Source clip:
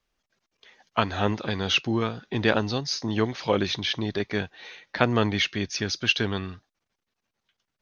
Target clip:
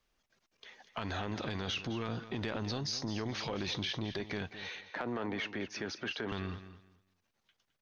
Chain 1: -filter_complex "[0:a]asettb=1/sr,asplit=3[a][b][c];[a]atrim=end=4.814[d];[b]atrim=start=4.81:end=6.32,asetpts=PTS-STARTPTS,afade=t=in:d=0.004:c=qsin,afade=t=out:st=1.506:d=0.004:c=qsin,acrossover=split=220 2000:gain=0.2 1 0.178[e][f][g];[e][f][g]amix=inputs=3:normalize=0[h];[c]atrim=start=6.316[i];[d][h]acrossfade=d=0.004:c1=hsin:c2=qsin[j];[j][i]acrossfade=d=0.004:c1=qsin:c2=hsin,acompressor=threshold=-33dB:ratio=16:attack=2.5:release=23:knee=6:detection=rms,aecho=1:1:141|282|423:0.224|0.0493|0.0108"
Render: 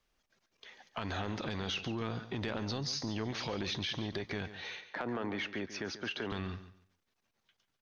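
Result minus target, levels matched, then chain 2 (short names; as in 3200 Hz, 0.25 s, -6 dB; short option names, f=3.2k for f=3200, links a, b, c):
echo 72 ms early
-filter_complex "[0:a]asettb=1/sr,asplit=3[a][b][c];[a]atrim=end=4.814[d];[b]atrim=start=4.81:end=6.32,asetpts=PTS-STARTPTS,afade=t=in:d=0.004:c=qsin,afade=t=out:st=1.506:d=0.004:c=qsin,acrossover=split=220 2000:gain=0.2 1 0.178[e][f][g];[e][f][g]amix=inputs=3:normalize=0[h];[c]atrim=start=6.316[i];[d][h]acrossfade=d=0.004:c1=hsin:c2=qsin[j];[j][i]acrossfade=d=0.004:c1=qsin:c2=hsin,acompressor=threshold=-33dB:ratio=16:attack=2.5:release=23:knee=6:detection=rms,aecho=1:1:213|426|639:0.224|0.0493|0.0108"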